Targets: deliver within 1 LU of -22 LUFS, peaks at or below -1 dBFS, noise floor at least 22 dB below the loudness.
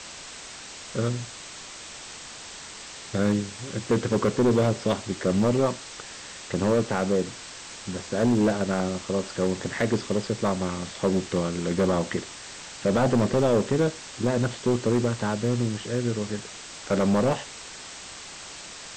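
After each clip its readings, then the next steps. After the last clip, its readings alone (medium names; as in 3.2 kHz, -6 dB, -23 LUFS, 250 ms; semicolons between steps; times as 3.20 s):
clipped samples 1.6%; clipping level -16.0 dBFS; noise floor -41 dBFS; noise floor target -48 dBFS; loudness -25.5 LUFS; peak level -16.0 dBFS; loudness target -22.0 LUFS
-> clip repair -16 dBFS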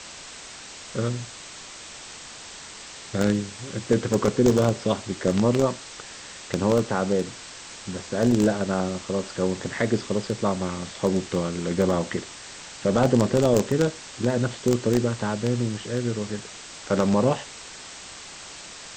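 clipped samples 0.0%; noise floor -41 dBFS; noise floor target -47 dBFS
-> noise print and reduce 6 dB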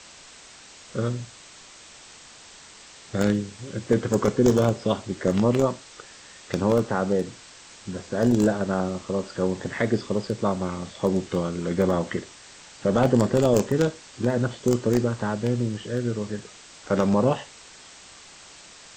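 noise floor -47 dBFS; loudness -24.5 LUFS; peak level -7.0 dBFS; loudness target -22.0 LUFS
-> trim +2.5 dB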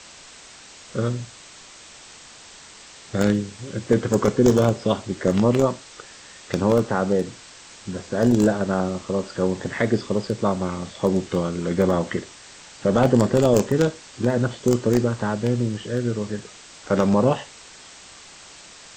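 loudness -22.0 LUFS; peak level -4.5 dBFS; noise floor -45 dBFS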